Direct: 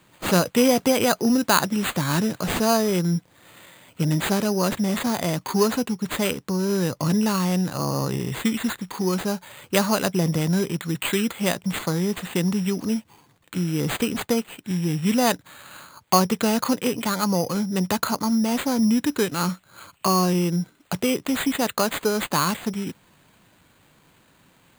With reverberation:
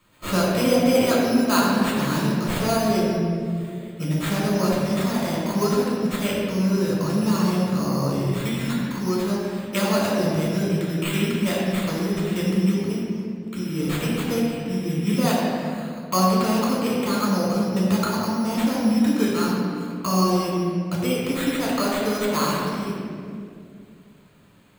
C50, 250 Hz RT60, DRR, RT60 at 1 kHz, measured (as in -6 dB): -1.5 dB, 2.9 s, -6.0 dB, 2.0 s